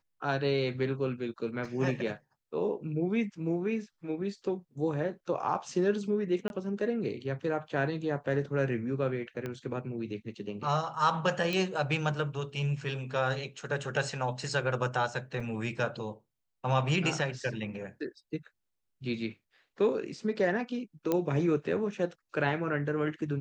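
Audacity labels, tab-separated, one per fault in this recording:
1.650000	1.650000	dropout 2.1 ms
6.480000	6.500000	dropout 21 ms
9.460000	9.460000	pop -23 dBFS
11.530000	11.530000	pop -18 dBFS
15.400000	15.400000	dropout 4.2 ms
21.120000	21.120000	pop -15 dBFS

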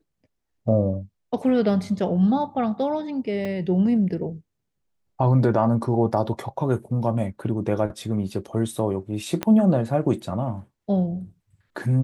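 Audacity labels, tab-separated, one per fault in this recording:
3.450000	3.450000	dropout 3.5 ms
9.430000	9.430000	pop -10 dBFS

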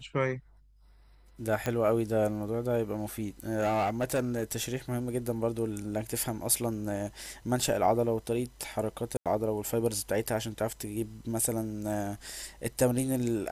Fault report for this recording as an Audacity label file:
1.660000	1.660000	pop -16 dBFS
3.400000	4.760000	clipped -24 dBFS
9.170000	9.260000	dropout 87 ms

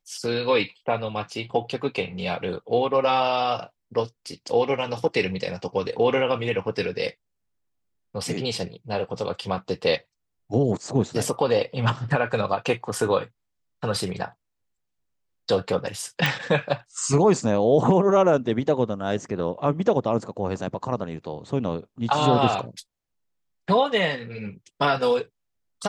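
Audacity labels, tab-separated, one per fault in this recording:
16.260000	16.260000	pop

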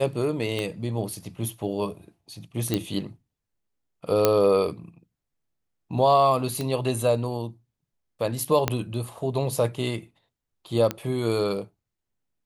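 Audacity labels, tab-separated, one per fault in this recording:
0.590000	0.590000	pop -16 dBFS
2.740000	2.740000	pop -10 dBFS
4.250000	4.250000	pop -4 dBFS
6.610000	6.610000	pop -16 dBFS
8.680000	8.680000	pop -7 dBFS
10.910000	10.910000	pop -12 dBFS

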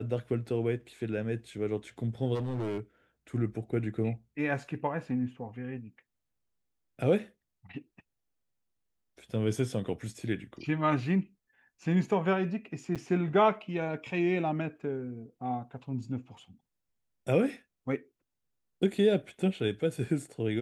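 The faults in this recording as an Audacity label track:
2.340000	2.800000	clipped -29.5 dBFS
12.950000	12.960000	dropout 6.8 ms

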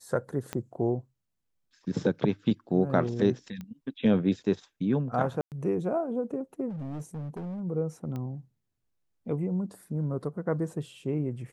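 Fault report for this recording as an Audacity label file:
0.530000	0.530000	pop -18 dBFS
3.610000	3.610000	pop -27 dBFS
5.410000	5.520000	dropout 108 ms
6.690000	7.610000	clipped -33.5 dBFS
8.160000	8.160000	pop -25 dBFS

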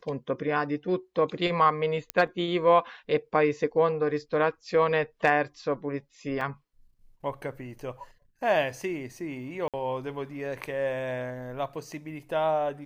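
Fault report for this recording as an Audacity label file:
2.100000	2.100000	pop -12 dBFS
6.410000	6.410000	dropout 2.7 ms
9.680000	9.740000	dropout 57 ms

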